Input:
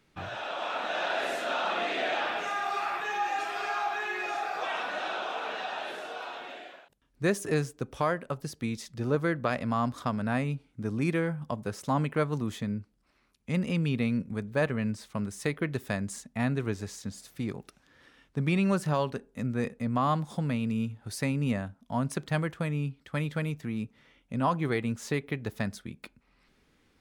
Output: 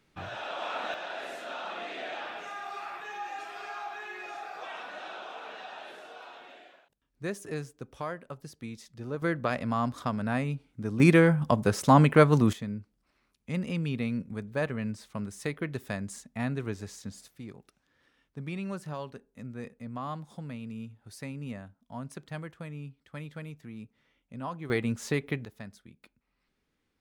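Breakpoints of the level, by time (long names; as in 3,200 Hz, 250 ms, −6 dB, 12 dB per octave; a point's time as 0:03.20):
−1.5 dB
from 0:00.94 −8 dB
from 0:09.22 −0.5 dB
from 0:11.00 +9 dB
from 0:12.53 −3 dB
from 0:17.28 −10 dB
from 0:24.70 +1 dB
from 0:25.45 −12 dB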